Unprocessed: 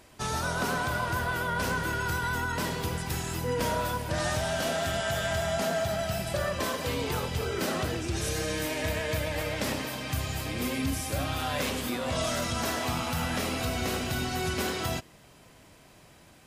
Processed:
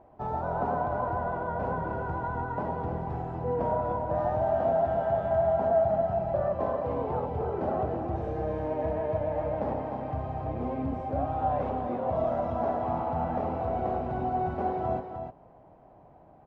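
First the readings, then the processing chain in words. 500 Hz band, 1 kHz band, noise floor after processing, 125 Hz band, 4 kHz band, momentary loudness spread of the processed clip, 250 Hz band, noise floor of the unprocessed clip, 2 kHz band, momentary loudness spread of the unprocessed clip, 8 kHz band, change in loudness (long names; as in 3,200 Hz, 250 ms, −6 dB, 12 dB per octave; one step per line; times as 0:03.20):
+4.5 dB, +4.0 dB, −55 dBFS, −2.0 dB, below −25 dB, 7 LU, −1.0 dB, −55 dBFS, −13.0 dB, 3 LU, below −40 dB, +0.5 dB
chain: low-pass with resonance 770 Hz, resonance Q 3.4
single-tap delay 304 ms −7 dB
level −3 dB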